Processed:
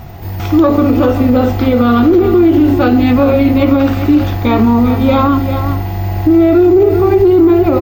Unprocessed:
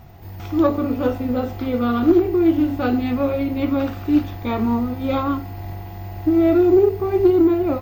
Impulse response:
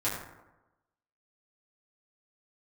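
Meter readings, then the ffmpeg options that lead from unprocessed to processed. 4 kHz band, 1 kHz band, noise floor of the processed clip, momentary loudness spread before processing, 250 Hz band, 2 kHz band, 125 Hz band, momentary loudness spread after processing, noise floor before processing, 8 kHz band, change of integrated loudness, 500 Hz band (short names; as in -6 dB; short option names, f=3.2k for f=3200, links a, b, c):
+11.0 dB, +10.5 dB, -20 dBFS, 12 LU, +9.0 dB, +10.5 dB, +13.0 dB, 7 LU, -34 dBFS, n/a, +9.0 dB, +8.5 dB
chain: -af "aecho=1:1:393:0.251,alimiter=level_in=14.5dB:limit=-1dB:release=50:level=0:latency=1,volume=-1dB"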